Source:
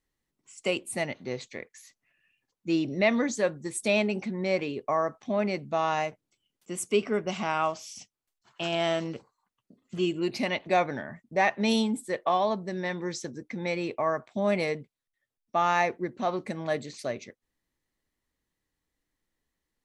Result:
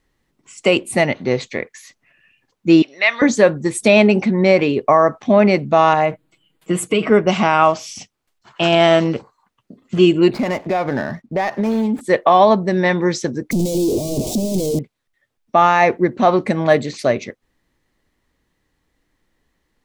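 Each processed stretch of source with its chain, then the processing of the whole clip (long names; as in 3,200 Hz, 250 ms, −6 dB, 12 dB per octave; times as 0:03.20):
0:02.82–0:03.22: high-pass filter 1,500 Hz + high-frequency loss of the air 52 metres
0:05.93–0:07.10: parametric band 5,700 Hz −12 dB 0.48 octaves + comb filter 6.3 ms, depth 91% + downward compressor 5 to 1, threshold −27 dBFS
0:10.33–0:12.01: running median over 15 samples + downward compressor 8 to 1, threshold −31 dBFS
0:13.51–0:14.79: sign of each sample alone + Chebyshev band-stop filter 340–6,700 Hz + bass and treble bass −3 dB, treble −1 dB
whole clip: high-shelf EQ 5,000 Hz −10 dB; boost into a limiter +17 dB; level −1 dB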